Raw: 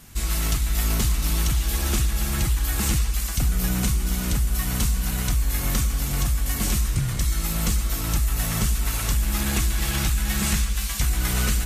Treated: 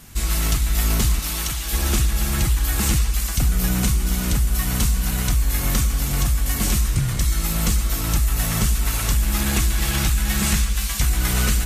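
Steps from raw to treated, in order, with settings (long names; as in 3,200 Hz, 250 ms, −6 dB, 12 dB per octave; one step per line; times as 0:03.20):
0:01.19–0:01.73: low-shelf EQ 400 Hz −9.5 dB
level +3 dB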